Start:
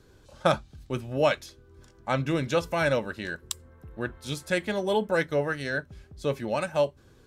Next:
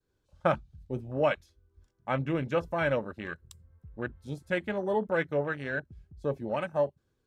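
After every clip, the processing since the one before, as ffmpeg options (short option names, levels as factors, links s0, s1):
-af "agate=range=0.0224:threshold=0.002:ratio=3:detection=peak,afwtdn=0.0178,volume=0.708"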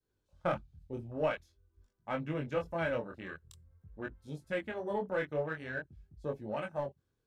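-filter_complex "[0:a]asplit=2[s0][s1];[s1]aeval=exprs='clip(val(0),-1,0.0596)':c=same,volume=0.398[s2];[s0][s2]amix=inputs=2:normalize=0,flanger=delay=19:depth=7.4:speed=0.47,volume=0.531"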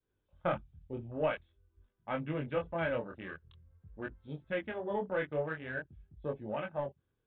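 -af "aresample=8000,aresample=44100"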